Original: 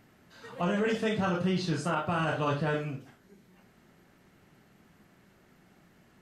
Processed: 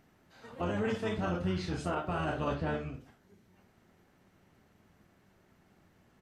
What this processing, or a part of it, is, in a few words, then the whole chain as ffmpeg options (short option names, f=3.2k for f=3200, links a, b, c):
octave pedal: -filter_complex "[0:a]asplit=2[a][b];[b]asetrate=22050,aresample=44100,atempo=2,volume=-4dB[c];[a][c]amix=inputs=2:normalize=0,asettb=1/sr,asplit=3[d][e][f];[d]atrim=end=2.544[g];[e]atrim=start=2.54:end=2.94,asetpts=PTS-STARTPTS,afade=t=in:d=0.004:c=qsin,afade=t=out:st=0.396:d=0.004:c=qsin,lowpass=7.4k[h];[f]atrim=start=2.936[i];[g][h]acrossfade=d=0.004:c1=hsin:c2=qsin[j];[j][i]acrossfade=d=0.004:c1=qsin:c2=hsin,equalizer=f=520:w=0.54:g=2,volume=-6.5dB"